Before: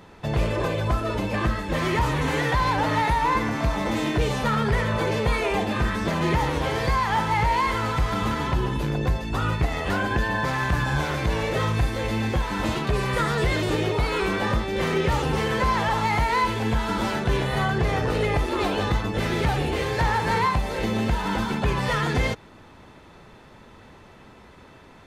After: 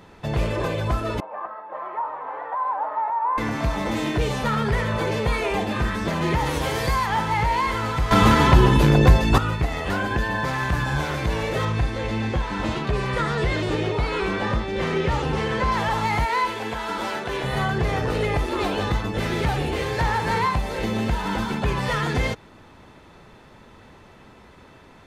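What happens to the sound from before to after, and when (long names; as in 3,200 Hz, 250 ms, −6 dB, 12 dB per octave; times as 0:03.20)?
0:01.20–0:03.38: flat-topped band-pass 870 Hz, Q 1.5
0:06.45–0:07.05: high-shelf EQ 5,200 Hz → 8,400 Hz +12 dB
0:08.11–0:09.38: clip gain +10 dB
0:11.65–0:15.72: high-frequency loss of the air 55 metres
0:16.25–0:17.44: bass and treble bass −14 dB, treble −2 dB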